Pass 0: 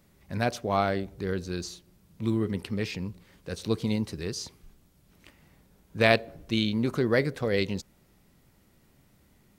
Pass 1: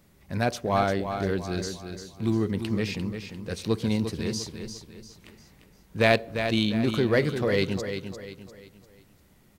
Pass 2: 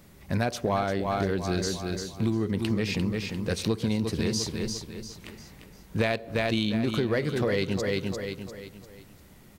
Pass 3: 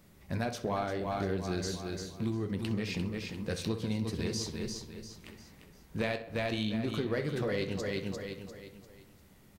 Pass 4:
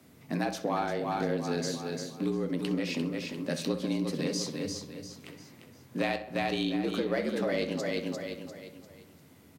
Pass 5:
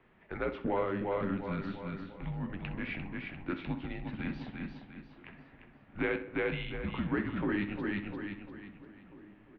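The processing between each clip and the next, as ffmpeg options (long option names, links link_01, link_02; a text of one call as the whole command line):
ffmpeg -i in.wav -filter_complex "[0:a]asplit=2[link_01][link_02];[link_02]asoftclip=type=hard:threshold=-21.5dB,volume=-5.5dB[link_03];[link_01][link_03]amix=inputs=2:normalize=0,aecho=1:1:348|696|1044|1392:0.398|0.151|0.0575|0.0218,volume=-1.5dB" out.wav
ffmpeg -i in.wav -af "acompressor=threshold=-29dB:ratio=12,volume=6.5dB" out.wav
ffmpeg -i in.wav -filter_complex "[0:a]flanger=delay=9.9:depth=4.4:regen=-62:speed=0.74:shape=triangular,asplit=2[link_01][link_02];[link_02]adelay=64,lowpass=frequency=3200:poles=1,volume=-12dB,asplit=2[link_03][link_04];[link_04]adelay=64,lowpass=frequency=3200:poles=1,volume=0.53,asplit=2[link_05][link_06];[link_06]adelay=64,lowpass=frequency=3200:poles=1,volume=0.53,asplit=2[link_07][link_08];[link_08]adelay=64,lowpass=frequency=3200:poles=1,volume=0.53,asplit=2[link_09][link_10];[link_10]adelay=64,lowpass=frequency=3200:poles=1,volume=0.53,asplit=2[link_11][link_12];[link_12]adelay=64,lowpass=frequency=3200:poles=1,volume=0.53[link_13];[link_01][link_03][link_05][link_07][link_09][link_11][link_13]amix=inputs=7:normalize=0,volume=-2.5dB" out.wav
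ffmpeg -i in.wav -af "afreqshift=73,volume=2.5dB" out.wav
ffmpeg -i in.wav -filter_complex "[0:a]highpass=frequency=400:width_type=q:width=0.5412,highpass=frequency=400:width_type=q:width=1.307,lowpass=frequency=3000:width_type=q:width=0.5176,lowpass=frequency=3000:width_type=q:width=0.7071,lowpass=frequency=3000:width_type=q:width=1.932,afreqshift=-260,asplit=2[link_01][link_02];[link_02]adelay=1691,volume=-21dB,highshelf=frequency=4000:gain=-38[link_03];[link_01][link_03]amix=inputs=2:normalize=0" out.wav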